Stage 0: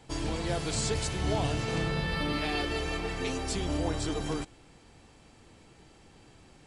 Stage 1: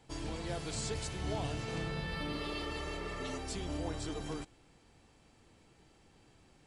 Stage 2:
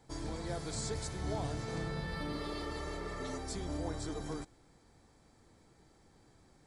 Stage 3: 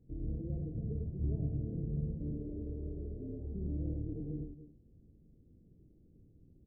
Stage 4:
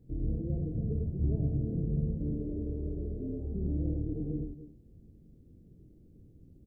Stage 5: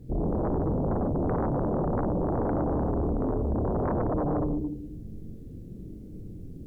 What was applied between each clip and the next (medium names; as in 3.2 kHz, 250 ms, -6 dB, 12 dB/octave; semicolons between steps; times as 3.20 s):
spectral replace 2.36–3.35 s, 360–2600 Hz before; trim -7.5 dB
peaking EQ 2.8 kHz -14.5 dB 0.35 oct
Gaussian low-pass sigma 25 samples; on a send: multi-tap echo 42/101/275/288 ms -9/-4.5/-16.5/-17.5 dB; on the sum: trim +3.5 dB
doubling 23 ms -14 dB; trim +5.5 dB
Schroeder reverb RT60 0.96 s, combs from 33 ms, DRR 1.5 dB; sine folder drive 16 dB, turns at -16.5 dBFS; trim -7 dB